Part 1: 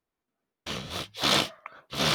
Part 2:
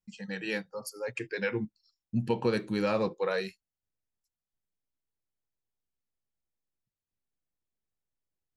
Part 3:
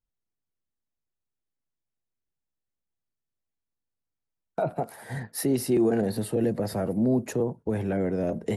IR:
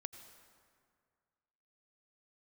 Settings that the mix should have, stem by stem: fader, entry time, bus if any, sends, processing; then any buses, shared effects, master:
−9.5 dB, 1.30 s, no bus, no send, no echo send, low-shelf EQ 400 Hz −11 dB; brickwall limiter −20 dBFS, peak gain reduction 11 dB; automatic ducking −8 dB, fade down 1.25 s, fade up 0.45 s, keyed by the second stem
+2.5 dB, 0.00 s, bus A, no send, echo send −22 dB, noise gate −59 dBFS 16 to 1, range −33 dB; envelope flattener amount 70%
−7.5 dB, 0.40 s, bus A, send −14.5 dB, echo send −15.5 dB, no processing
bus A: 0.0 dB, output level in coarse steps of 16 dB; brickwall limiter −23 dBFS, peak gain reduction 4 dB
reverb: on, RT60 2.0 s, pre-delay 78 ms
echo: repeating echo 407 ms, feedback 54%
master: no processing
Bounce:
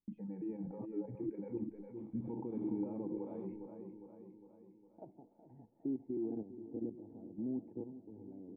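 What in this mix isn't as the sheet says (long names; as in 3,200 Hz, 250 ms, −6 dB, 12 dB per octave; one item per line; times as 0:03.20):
stem 1 −9.5 dB → +1.0 dB
stem 2 +2.5 dB → +9.5 dB
master: extra formant resonators in series u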